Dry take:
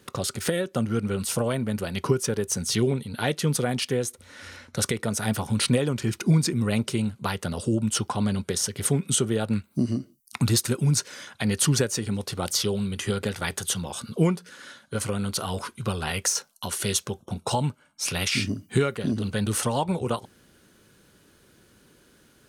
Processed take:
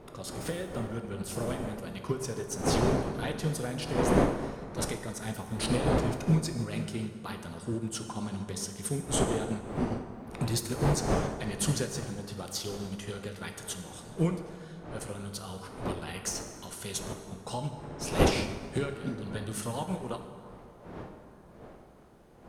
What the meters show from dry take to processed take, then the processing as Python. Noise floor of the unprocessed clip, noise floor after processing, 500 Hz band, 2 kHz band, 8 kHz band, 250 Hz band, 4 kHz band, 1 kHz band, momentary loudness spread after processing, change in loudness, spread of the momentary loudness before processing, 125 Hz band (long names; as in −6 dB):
−59 dBFS, −51 dBFS, −4.0 dB, −7.0 dB, −9.5 dB, −6.0 dB, −9.0 dB, −3.0 dB, 14 LU, −6.5 dB, 8 LU, −6.5 dB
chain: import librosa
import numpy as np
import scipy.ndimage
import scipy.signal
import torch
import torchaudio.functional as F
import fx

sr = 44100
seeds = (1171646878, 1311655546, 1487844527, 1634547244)

y = fx.dmg_wind(x, sr, seeds[0], corner_hz=560.0, level_db=-29.0)
y = fx.rev_plate(y, sr, seeds[1], rt60_s=2.6, hf_ratio=0.55, predelay_ms=0, drr_db=3.5)
y = fx.upward_expand(y, sr, threshold_db=-28.0, expansion=1.5)
y = y * librosa.db_to_amplitude(-5.5)